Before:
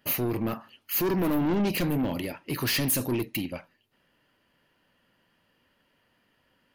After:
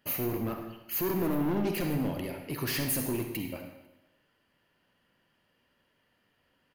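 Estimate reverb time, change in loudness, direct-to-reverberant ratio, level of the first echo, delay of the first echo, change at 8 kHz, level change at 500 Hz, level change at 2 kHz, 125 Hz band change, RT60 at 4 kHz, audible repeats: 1.0 s, -4.0 dB, 4.5 dB, -23.0 dB, 0.249 s, -4.0 dB, -3.0 dB, -5.0 dB, -3.5 dB, 0.95 s, 2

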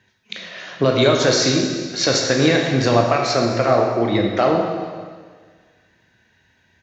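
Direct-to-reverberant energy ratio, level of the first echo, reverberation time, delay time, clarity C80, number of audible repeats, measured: 1.0 dB, -22.0 dB, 1.6 s, 0.434 s, 4.5 dB, 1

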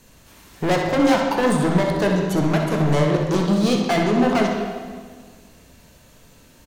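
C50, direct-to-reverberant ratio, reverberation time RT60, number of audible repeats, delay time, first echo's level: 1.5 dB, -1.0 dB, 1.7 s, 1, 63 ms, -8.5 dB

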